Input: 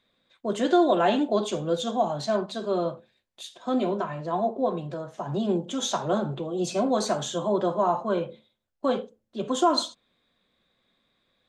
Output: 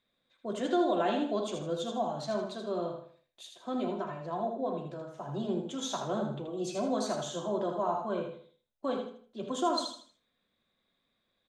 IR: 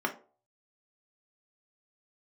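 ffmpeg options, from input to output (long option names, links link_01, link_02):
-filter_complex "[0:a]aecho=1:1:79|158|237|316:0.501|0.165|0.0546|0.018,asplit=2[link_01][link_02];[1:a]atrim=start_sample=2205,adelay=38[link_03];[link_02][link_03]afir=irnorm=-1:irlink=0,volume=-22dB[link_04];[link_01][link_04]amix=inputs=2:normalize=0,volume=-8.5dB"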